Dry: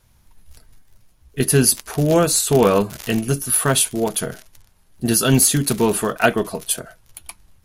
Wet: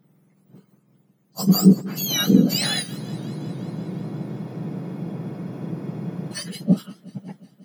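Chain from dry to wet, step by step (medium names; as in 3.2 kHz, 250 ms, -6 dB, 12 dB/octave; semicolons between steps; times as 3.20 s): spectrum inverted on a logarithmic axis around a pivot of 1.4 kHz; spectral freeze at 3.01 s, 3.32 s; modulated delay 180 ms, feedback 74%, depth 105 cents, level -22 dB; trim -4 dB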